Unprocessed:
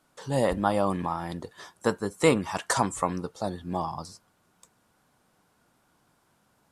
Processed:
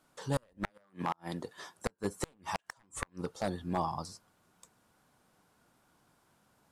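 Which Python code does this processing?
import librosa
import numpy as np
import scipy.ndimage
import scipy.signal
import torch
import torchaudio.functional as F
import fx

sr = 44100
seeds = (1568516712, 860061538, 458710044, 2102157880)

y = np.minimum(x, 2.0 * 10.0 ** (-20.0 / 20.0) - x)
y = fx.highpass(y, sr, hz=140.0, slope=12, at=(0.69, 1.77), fade=0.02)
y = fx.gate_flip(y, sr, shuts_db=-18.0, range_db=-38)
y = y * librosa.db_to_amplitude(-2.0)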